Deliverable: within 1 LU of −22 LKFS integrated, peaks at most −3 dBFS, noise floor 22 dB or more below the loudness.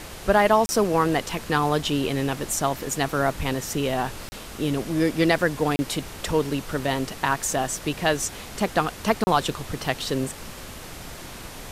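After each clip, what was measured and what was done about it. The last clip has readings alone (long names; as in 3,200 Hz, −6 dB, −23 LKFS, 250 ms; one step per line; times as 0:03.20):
number of dropouts 4; longest dropout 30 ms; background noise floor −39 dBFS; target noise floor −47 dBFS; integrated loudness −24.5 LKFS; sample peak −6.0 dBFS; target loudness −22.0 LKFS
→ repair the gap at 0:00.66/0:04.29/0:05.76/0:09.24, 30 ms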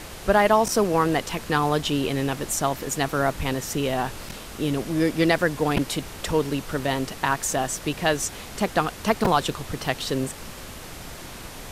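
number of dropouts 0; background noise floor −39 dBFS; target noise floor −47 dBFS
→ noise reduction from a noise print 8 dB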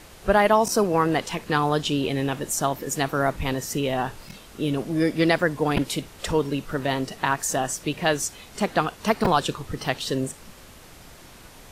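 background noise floor −47 dBFS; integrated loudness −24.5 LKFS; sample peak −6.0 dBFS; target loudness −22.0 LKFS
→ level +2.5 dB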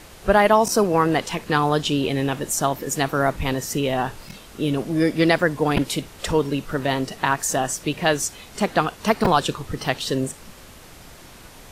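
integrated loudness −22.0 LKFS; sample peak −3.5 dBFS; background noise floor −44 dBFS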